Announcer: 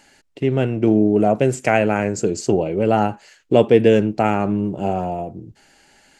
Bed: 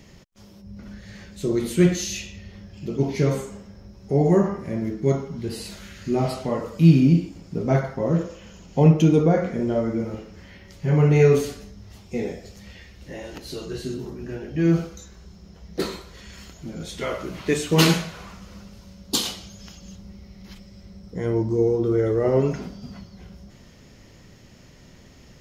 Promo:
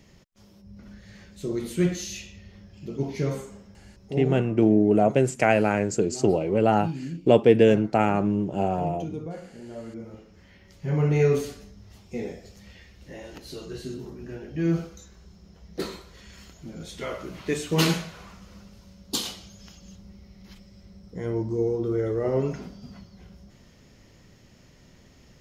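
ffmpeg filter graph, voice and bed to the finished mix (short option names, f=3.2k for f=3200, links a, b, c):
-filter_complex "[0:a]adelay=3750,volume=-3.5dB[a];[1:a]volume=7dB,afade=t=out:st=3.94:d=0.5:silence=0.251189,afade=t=in:st=9.64:d=1.46:silence=0.223872[b];[a][b]amix=inputs=2:normalize=0"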